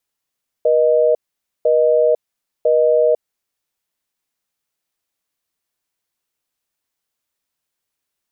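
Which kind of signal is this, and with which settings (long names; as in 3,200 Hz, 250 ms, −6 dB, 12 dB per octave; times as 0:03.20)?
call progress tone busy tone, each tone −13.5 dBFS 2.52 s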